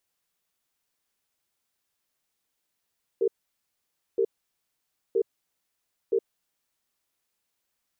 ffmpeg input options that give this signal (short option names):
-f lavfi -i "aevalsrc='0.0708*(sin(2*PI*392*t)+sin(2*PI*457*t))*clip(min(mod(t,0.97),0.07-mod(t,0.97))/0.005,0,1)':d=3.58:s=44100"